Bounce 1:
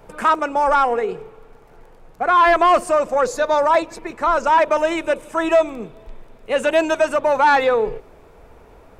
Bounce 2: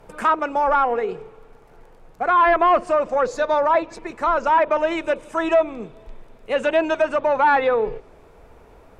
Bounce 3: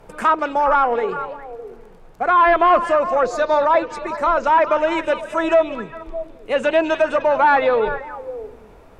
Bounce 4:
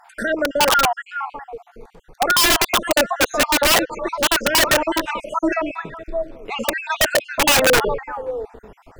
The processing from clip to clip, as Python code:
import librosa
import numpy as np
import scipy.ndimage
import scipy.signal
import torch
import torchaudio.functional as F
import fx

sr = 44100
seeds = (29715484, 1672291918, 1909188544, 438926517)

y1 = fx.env_lowpass_down(x, sr, base_hz=2500.0, full_db=-11.5)
y1 = y1 * librosa.db_to_amplitude(-2.0)
y2 = fx.echo_stepped(y1, sr, ms=204, hz=3600.0, octaves=-1.4, feedback_pct=70, wet_db=-6.5)
y2 = y2 * librosa.db_to_amplitude(2.0)
y3 = fx.spec_dropout(y2, sr, seeds[0], share_pct=54)
y3 = (np.mod(10.0 ** (13.5 / 20.0) * y3 + 1.0, 2.0) - 1.0) / 10.0 ** (13.5 / 20.0)
y3 = y3 * librosa.db_to_amplitude(4.0)